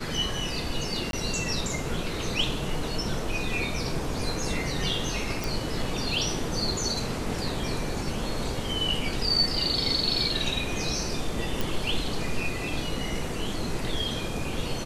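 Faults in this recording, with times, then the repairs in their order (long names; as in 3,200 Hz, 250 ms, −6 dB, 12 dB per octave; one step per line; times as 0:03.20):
0:01.11–0:01.13: drop-out 22 ms
0:05.44: click
0:11.61: click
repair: click removal
repair the gap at 0:01.11, 22 ms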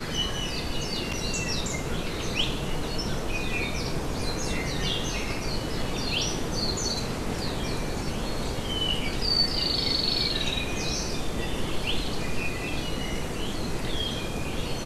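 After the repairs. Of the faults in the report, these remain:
none of them is left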